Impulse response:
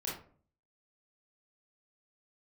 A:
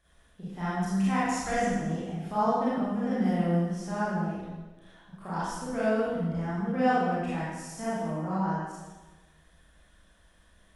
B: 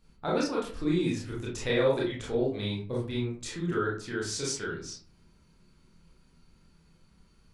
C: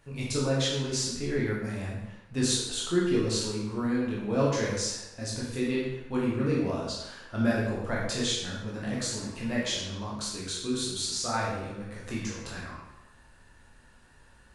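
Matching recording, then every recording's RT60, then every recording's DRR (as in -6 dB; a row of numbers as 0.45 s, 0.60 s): B; 1.3 s, 0.45 s, 1.0 s; -10.5 dB, -5.5 dB, -5.5 dB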